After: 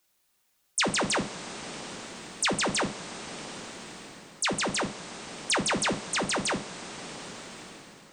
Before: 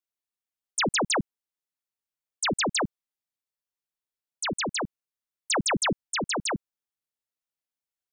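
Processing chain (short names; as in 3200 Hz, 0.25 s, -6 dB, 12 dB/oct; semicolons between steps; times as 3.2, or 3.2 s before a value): two-slope reverb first 0.28 s, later 2.7 s, from -17 dB, DRR 3.5 dB; three-band squash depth 70%; gain -1.5 dB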